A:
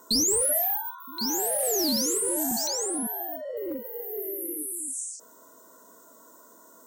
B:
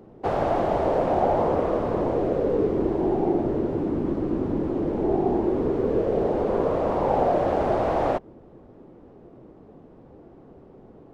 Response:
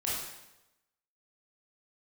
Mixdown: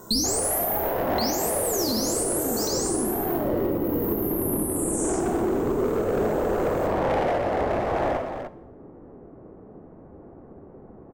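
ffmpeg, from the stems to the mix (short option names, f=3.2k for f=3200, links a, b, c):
-filter_complex "[0:a]lowshelf=f=170:g=10.5,volume=2dB,asplit=2[a][b];[b]volume=-7dB[c];[1:a]lowpass=f=1.9k:w=0.5412,lowpass=f=1.9k:w=1.3066,asoftclip=type=hard:threshold=-22dB,volume=-1.5dB,asplit=3[d][e][f];[e]volume=-7.5dB[g];[f]volume=-7dB[h];[2:a]atrim=start_sample=2205[i];[c][g]amix=inputs=2:normalize=0[j];[j][i]afir=irnorm=-1:irlink=0[k];[h]aecho=0:1:300:1[l];[a][d][k][l]amix=inputs=4:normalize=0,alimiter=limit=-15.5dB:level=0:latency=1:release=377"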